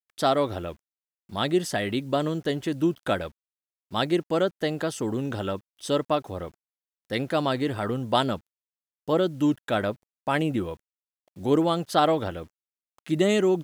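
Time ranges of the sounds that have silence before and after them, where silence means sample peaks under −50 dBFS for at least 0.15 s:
0:01.29–0:03.31
0:03.91–0:05.60
0:05.79–0:06.54
0:07.10–0:08.40
0:09.08–0:09.95
0:10.27–0:10.77
0:11.36–0:12.47

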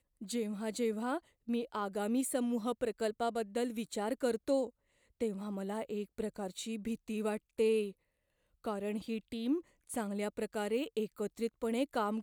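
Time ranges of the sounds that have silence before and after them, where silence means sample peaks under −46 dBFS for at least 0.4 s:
0:05.20–0:07.91

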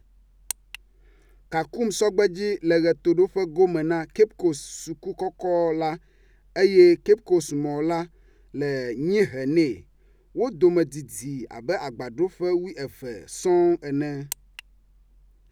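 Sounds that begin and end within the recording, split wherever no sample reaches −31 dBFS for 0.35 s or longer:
0:00.51–0:00.75
0:01.52–0:05.95
0:06.56–0:08.04
0:08.55–0:09.74
0:10.36–0:14.59

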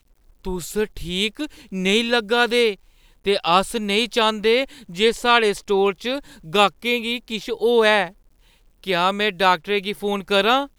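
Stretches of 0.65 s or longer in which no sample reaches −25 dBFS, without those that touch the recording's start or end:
0:08.07–0:08.87

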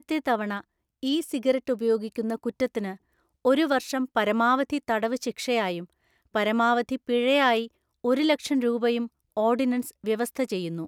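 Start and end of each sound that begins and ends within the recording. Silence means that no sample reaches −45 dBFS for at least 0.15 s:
0:01.03–0:02.96
0:03.45–0:05.85
0:06.34–0:07.67
0:08.04–0:09.07

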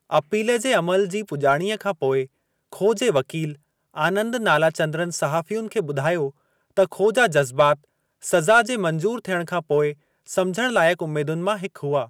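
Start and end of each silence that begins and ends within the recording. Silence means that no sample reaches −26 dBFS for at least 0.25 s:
0:02.23–0:02.73
0:03.51–0:03.97
0:06.28–0:06.77
0:07.74–0:08.25
0:09.91–0:10.31

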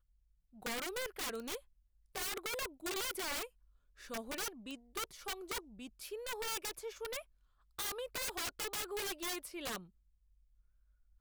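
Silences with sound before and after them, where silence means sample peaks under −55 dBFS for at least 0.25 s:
0:01.60–0:02.15
0:03.48–0:03.98
0:07.23–0:07.78

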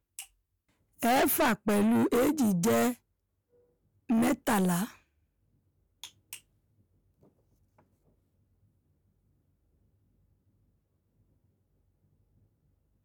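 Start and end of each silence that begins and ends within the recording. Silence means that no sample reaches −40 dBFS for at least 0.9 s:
0:02.94–0:04.10
0:04.90–0:06.03

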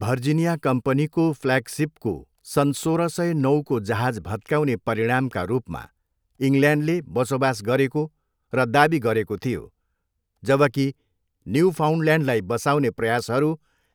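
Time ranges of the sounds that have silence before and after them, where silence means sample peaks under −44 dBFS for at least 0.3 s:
0:06.40–0:08.08
0:08.53–0:09.67
0:10.43–0:10.92
0:11.46–0:13.56

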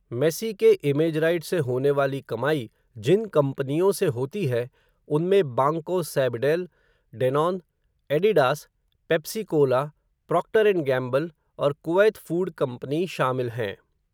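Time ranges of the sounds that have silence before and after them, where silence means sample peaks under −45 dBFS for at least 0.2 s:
0:02.96–0:04.68
0:05.08–0:06.66
0:07.13–0:07.60
0:08.10–0:08.64
0:09.10–0:09.90
0:10.29–0:11.30
0:11.59–0:13.75

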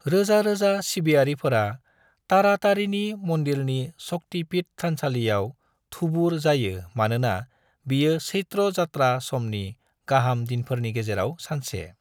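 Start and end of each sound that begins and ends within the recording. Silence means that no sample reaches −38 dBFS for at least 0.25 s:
0:02.30–0:05.51
0:05.92–0:07.44
0:07.87–0:09.73

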